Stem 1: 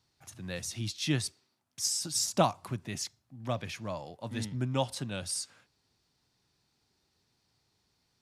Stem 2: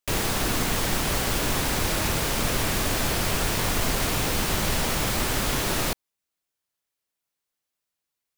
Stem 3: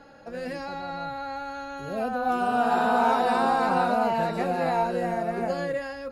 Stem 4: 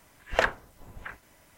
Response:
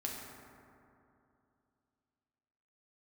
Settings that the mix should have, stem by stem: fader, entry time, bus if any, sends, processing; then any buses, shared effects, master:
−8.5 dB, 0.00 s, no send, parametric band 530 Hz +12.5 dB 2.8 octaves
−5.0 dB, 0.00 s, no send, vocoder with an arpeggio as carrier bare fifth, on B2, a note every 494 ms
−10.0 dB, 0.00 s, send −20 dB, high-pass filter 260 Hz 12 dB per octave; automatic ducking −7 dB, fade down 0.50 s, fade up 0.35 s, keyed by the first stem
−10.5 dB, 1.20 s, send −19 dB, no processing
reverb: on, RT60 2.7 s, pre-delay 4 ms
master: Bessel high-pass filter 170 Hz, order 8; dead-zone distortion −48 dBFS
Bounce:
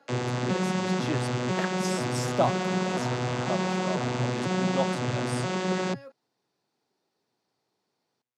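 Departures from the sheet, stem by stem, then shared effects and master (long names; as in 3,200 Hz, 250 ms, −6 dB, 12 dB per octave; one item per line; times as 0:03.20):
stem 2 −5.0 dB → +2.5 dB
stem 3: send off
master: missing dead-zone distortion −48 dBFS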